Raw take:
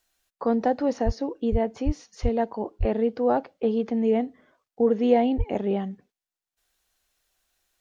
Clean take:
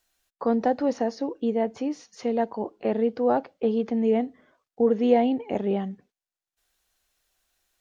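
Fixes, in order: de-plosive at 1.05/1.51/1.85/2.22/2.79/5.37 s

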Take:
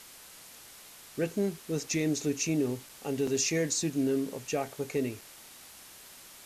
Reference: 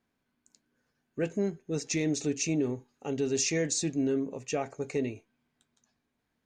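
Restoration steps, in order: interpolate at 2.89/3.27/5.21 s, 3.6 ms; noise print and reduce 28 dB

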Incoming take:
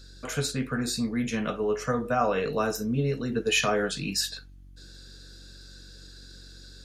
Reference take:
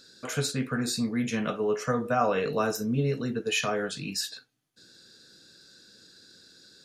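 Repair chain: de-hum 46.7 Hz, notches 7; gain correction -3.5 dB, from 3.32 s

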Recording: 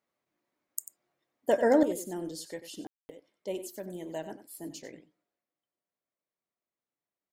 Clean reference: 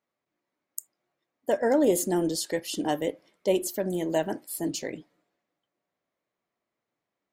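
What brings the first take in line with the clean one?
room tone fill 2.87–3.09 s; inverse comb 93 ms -12.5 dB; trim 0 dB, from 1.83 s +11.5 dB

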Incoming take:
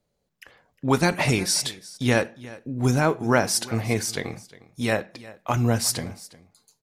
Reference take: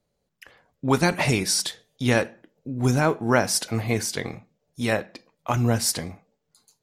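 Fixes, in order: clip repair -7 dBFS; inverse comb 357 ms -19.5 dB

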